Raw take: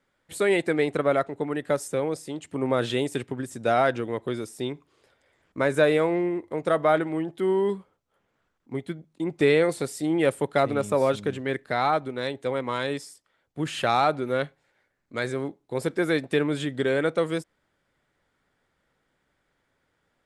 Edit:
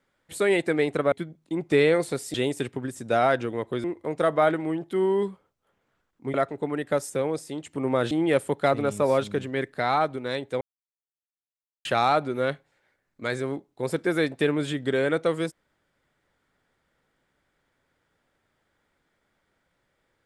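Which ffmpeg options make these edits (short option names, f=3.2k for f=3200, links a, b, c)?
-filter_complex "[0:a]asplit=8[a][b][c][d][e][f][g][h];[a]atrim=end=1.122[i];[b]atrim=start=8.808:end=10.032[j];[c]atrim=start=2.888:end=4.392[k];[d]atrim=start=6.308:end=8.812[l];[e]atrim=start=1.118:end=2.892[m];[f]atrim=start=10.028:end=12.53,asetpts=PTS-STARTPTS,afade=t=out:st=2.498:d=0.004:c=hsin[n];[g]atrim=start=12.53:end=13.77,asetpts=PTS-STARTPTS,volume=0[o];[h]atrim=start=13.77,asetpts=PTS-STARTPTS,afade=t=in:d=0.004:c=hsin[p];[i][j]acrossfade=d=0.004:c1=hsin:c2=hsin[q];[q][k]acrossfade=d=0.004:c1=hsin:c2=hsin[r];[r][l]acrossfade=d=0.004:c1=hsin:c2=hsin[s];[s][m]acrossfade=d=0.004:c1=hsin:c2=hsin[t];[n][o][p]concat=n=3:v=0:a=1[u];[t][u]acrossfade=d=0.004:c1=hsin:c2=hsin"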